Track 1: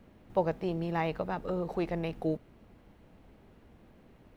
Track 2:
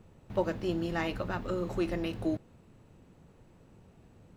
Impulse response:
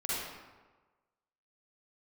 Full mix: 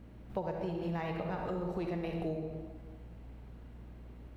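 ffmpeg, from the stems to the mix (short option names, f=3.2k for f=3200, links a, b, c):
-filter_complex "[0:a]equalizer=f=180:w=1.5:g=2.5,aeval=exprs='val(0)+0.00316*(sin(2*PI*60*n/s)+sin(2*PI*2*60*n/s)/2+sin(2*PI*3*60*n/s)/3+sin(2*PI*4*60*n/s)/4+sin(2*PI*5*60*n/s)/5)':c=same,volume=-4.5dB,asplit=2[a][b];[b]volume=-4dB[c];[1:a]volume=-14dB[d];[2:a]atrim=start_sample=2205[e];[c][e]afir=irnorm=-1:irlink=0[f];[a][d][f]amix=inputs=3:normalize=0,acompressor=threshold=-33dB:ratio=5"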